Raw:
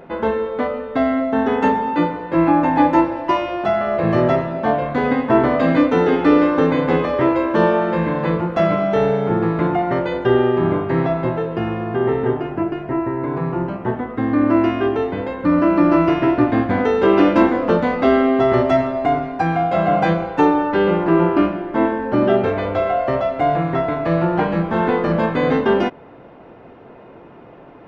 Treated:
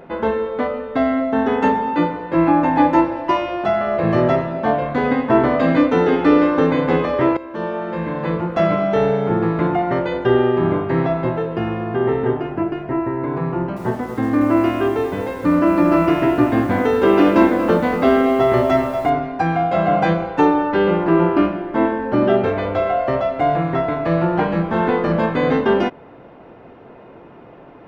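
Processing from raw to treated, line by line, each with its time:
7.37–8.64 fade in, from -16.5 dB
13.53–19.1 lo-fi delay 0.234 s, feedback 35%, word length 6-bit, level -11.5 dB

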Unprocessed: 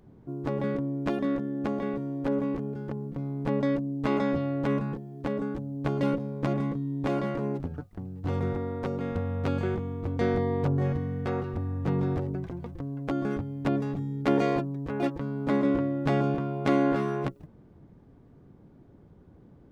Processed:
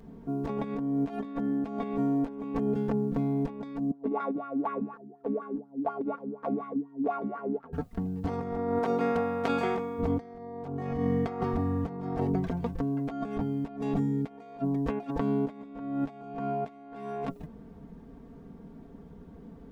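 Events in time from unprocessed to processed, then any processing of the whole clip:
3.91–7.73 wah 4.1 Hz 260–1400 Hz, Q 4.9
8.78–9.98 HPF 330 Hz -> 760 Hz 6 dB/oct
whole clip: dynamic EQ 740 Hz, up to +7 dB, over -48 dBFS, Q 2.9; comb 4.4 ms, depth 87%; negative-ratio compressor -30 dBFS, ratio -0.5

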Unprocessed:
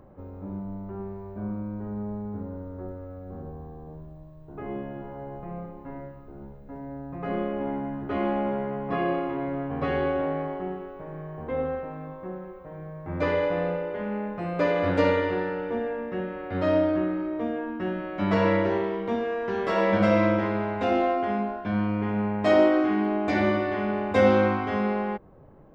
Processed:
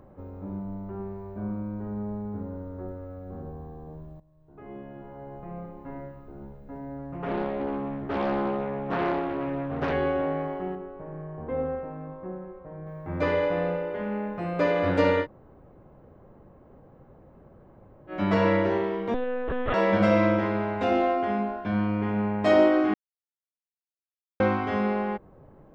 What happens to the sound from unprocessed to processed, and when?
4.2–5.95 fade in, from -16.5 dB
6.98–9.93 Doppler distortion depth 0.58 ms
10.75–12.87 LPF 1200 Hz 6 dB/oct
15.24–18.1 room tone, crossfade 0.06 s
19.14–19.74 monotone LPC vocoder at 8 kHz 250 Hz
22.94–24.4 mute

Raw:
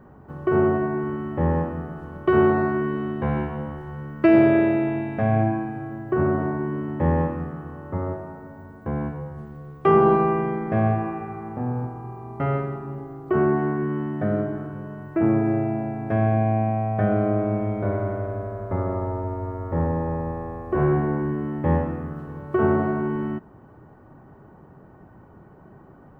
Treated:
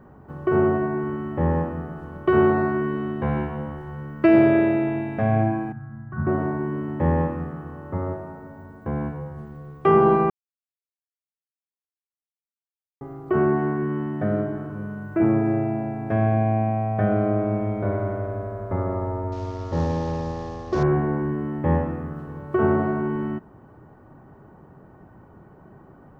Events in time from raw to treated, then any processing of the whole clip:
5.72–6.27 EQ curve 210 Hz 0 dB, 390 Hz -27 dB, 550 Hz -20 dB, 1500 Hz -3 dB, 2300 Hz -19 dB
10.3–13.01 mute
14.66–15.24 flutter echo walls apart 6.7 m, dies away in 0.52 s
19.32–20.83 CVSD 32 kbps

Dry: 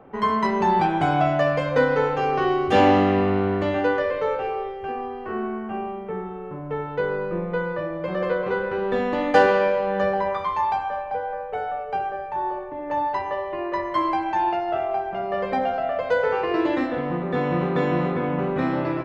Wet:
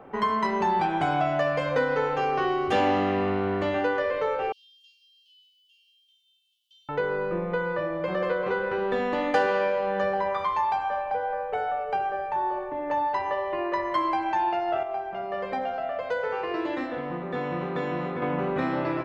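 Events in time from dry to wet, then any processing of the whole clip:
4.52–6.89 Chebyshev high-pass 3000 Hz, order 8
14.83–18.22 gain -6.5 dB
whole clip: low shelf 360 Hz -5.5 dB; compressor 2:1, threshold -29 dBFS; gain +3 dB

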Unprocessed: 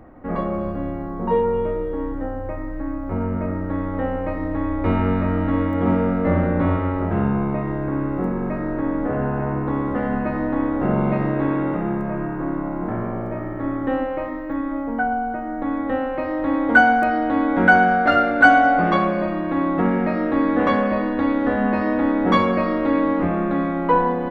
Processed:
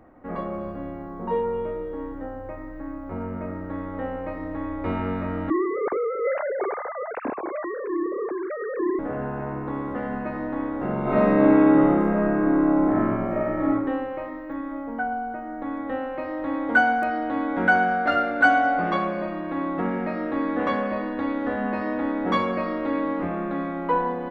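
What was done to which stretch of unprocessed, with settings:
5.5–8.99 sine-wave speech
11.02–13.69 reverb throw, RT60 1 s, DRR -7.5 dB
whole clip: low shelf 180 Hz -6.5 dB; gain -5 dB

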